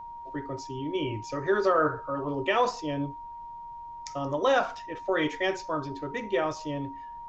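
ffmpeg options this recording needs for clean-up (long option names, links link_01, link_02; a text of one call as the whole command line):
ffmpeg -i in.wav -af "bandreject=frequency=940:width=30,agate=range=-21dB:threshold=-34dB" out.wav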